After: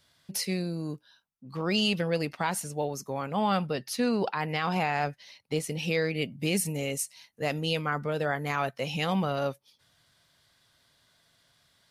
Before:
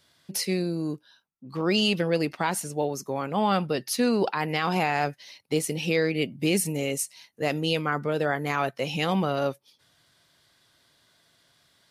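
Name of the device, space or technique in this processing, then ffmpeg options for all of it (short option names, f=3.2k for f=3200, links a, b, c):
low shelf boost with a cut just above: -filter_complex "[0:a]asettb=1/sr,asplit=3[a][b][c];[a]atrim=end=3.694[d];[b]atrim=start=3.69:end=5.79,asetpts=PTS-STARTPTS,afade=t=in:d=0.004:c=qsin,afade=t=out:st=2.096:d=0.004:c=qsin,highshelf=f=6.3k:g=-6[e];[c]atrim=start=5.786[f];[d][e]acrossfade=d=0.004:c1=hsin:c2=qsin[g];[g][f]acrossfade=d=0.004:c1=qsin:c2=hsin,lowshelf=f=73:g=7.5,equalizer=f=340:t=o:w=0.58:g=-5.5,volume=-2.5dB"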